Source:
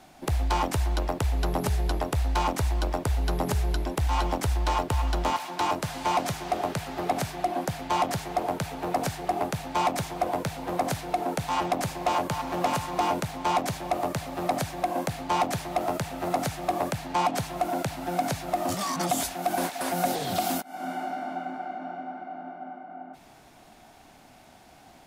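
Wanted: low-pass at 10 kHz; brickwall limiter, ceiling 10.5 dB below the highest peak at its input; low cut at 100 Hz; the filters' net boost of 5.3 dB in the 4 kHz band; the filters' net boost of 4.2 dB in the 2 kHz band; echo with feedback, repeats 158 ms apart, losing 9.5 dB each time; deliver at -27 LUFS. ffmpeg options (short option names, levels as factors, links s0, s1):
-af "highpass=100,lowpass=10000,equalizer=f=2000:t=o:g=4,equalizer=f=4000:t=o:g=5.5,alimiter=limit=0.0794:level=0:latency=1,aecho=1:1:158|316|474|632:0.335|0.111|0.0365|0.012,volume=1.78"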